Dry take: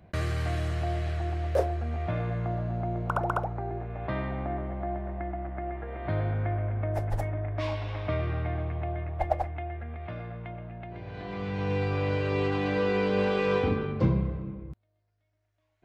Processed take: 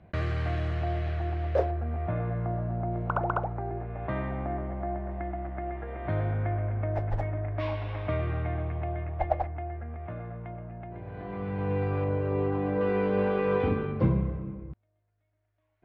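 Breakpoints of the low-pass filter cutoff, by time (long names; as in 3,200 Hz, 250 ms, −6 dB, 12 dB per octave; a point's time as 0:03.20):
3,200 Hz
from 0:01.71 1,700 Hz
from 0:02.93 2,500 Hz
from 0:05.11 4,400 Hz
from 0:05.92 3,000 Hz
from 0:09.47 1,600 Hz
from 0:12.04 1,100 Hz
from 0:12.81 1,700 Hz
from 0:13.60 2,500 Hz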